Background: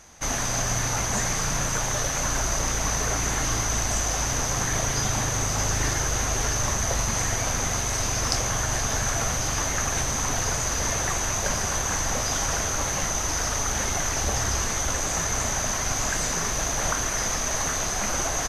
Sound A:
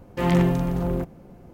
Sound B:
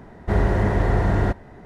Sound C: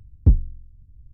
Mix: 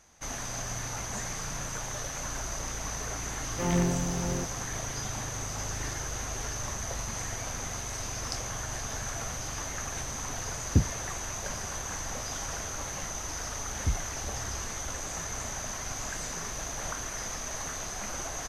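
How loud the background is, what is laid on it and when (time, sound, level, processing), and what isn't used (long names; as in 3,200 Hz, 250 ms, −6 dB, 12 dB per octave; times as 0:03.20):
background −10 dB
0:03.41: mix in A −7.5 dB
0:10.49: mix in C −0.5 dB + high-pass filter 130 Hz
0:13.60: mix in C −14.5 dB
not used: B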